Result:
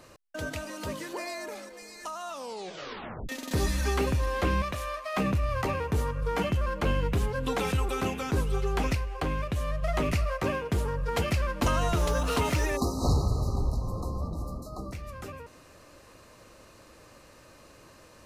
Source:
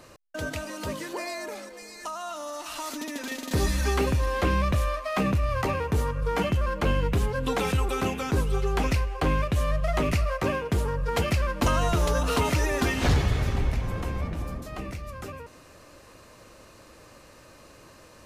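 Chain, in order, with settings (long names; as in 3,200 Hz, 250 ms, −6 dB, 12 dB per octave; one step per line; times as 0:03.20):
0:02.29: tape stop 1.00 s
0:04.62–0:05.14: low-shelf EQ 320 Hz −11.5 dB
0:08.94–0:09.83: downward compressor 2 to 1, threshold −26 dBFS, peak gain reduction 4 dB
0:11.96–0:12.70: surface crackle 140 per second → 410 per second −36 dBFS
0:12.76–0:14.92: time-frequency box erased 1,300–3,800 Hz
level −2.5 dB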